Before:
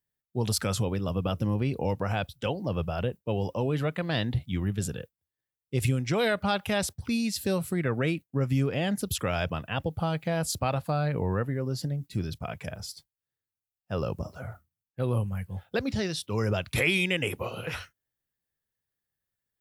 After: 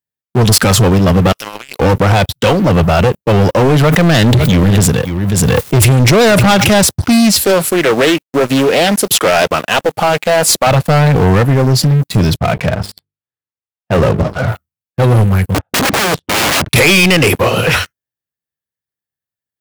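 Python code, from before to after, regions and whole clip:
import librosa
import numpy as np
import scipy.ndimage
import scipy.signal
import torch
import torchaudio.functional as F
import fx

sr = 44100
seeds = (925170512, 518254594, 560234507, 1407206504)

y = fx.chain(x, sr, fx.highpass(hz=1400.0, slope=12),
    fx.over_compress(threshold_db=-51.0, ratio=-1.0), at=(1.32, 1.8))
y = fx.chain(y, sr, fx.echo_single(ms=542, db=-21.5),
    fx.pre_swell(db_per_s=27.0), at=(3.81, 6.7))
y = fx.chain(y, sr, fx.highpass(hz=330.0, slope=12),
    fx.quant_companded(bits=6),
    fx.doppler_dist(depth_ms=0.34), at=(7.43, 10.67))
y = fx.chain(y, sr, fx.moving_average(points=7),
    fx.hum_notches(base_hz=50, count=9), at=(12.37, 14.48))
y = fx.chain(y, sr, fx.lowpass(hz=1000.0, slope=12),
    fx.overflow_wrap(gain_db=32.5), at=(15.54, 16.69))
y = scipy.signal.sosfilt(scipy.signal.butter(2, 73.0, 'highpass', fs=sr, output='sos'), y)
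y = fx.leveller(y, sr, passes=5)
y = y * librosa.db_to_amplitude(7.0)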